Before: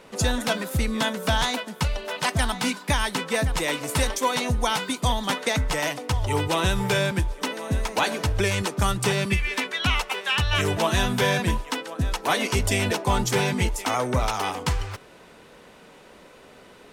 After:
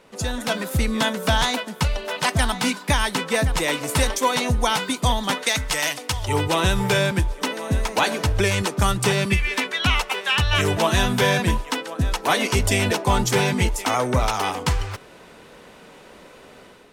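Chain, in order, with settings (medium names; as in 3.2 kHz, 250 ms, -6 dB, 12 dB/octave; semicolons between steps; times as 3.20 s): 5.43–6.28 s: tilt shelf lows -6 dB, about 1.4 kHz; level rider gain up to 7.5 dB; trim -4 dB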